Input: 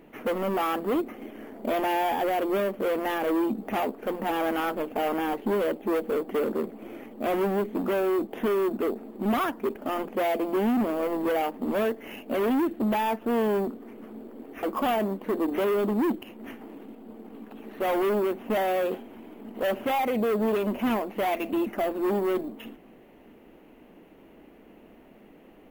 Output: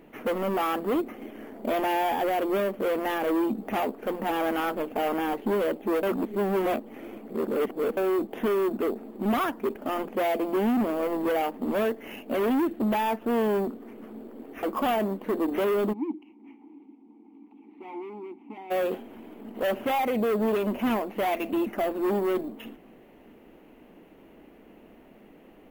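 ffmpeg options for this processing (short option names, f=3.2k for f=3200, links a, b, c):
-filter_complex "[0:a]asplit=3[a][b][c];[a]afade=t=out:st=15.92:d=0.02[d];[b]asplit=3[e][f][g];[e]bandpass=f=300:t=q:w=8,volume=0dB[h];[f]bandpass=f=870:t=q:w=8,volume=-6dB[i];[g]bandpass=f=2.24k:t=q:w=8,volume=-9dB[j];[h][i][j]amix=inputs=3:normalize=0,afade=t=in:st=15.92:d=0.02,afade=t=out:st=18.7:d=0.02[k];[c]afade=t=in:st=18.7:d=0.02[l];[d][k][l]amix=inputs=3:normalize=0,asplit=3[m][n][o];[m]atrim=end=6.032[p];[n]atrim=start=6.028:end=7.972,asetpts=PTS-STARTPTS,areverse[q];[o]atrim=start=7.968[r];[p][q]acrossfade=d=0.004:c1=hsin:c2=hsin[s];[s][r]acrossfade=d=0.004:c1=hsin:c2=hsin"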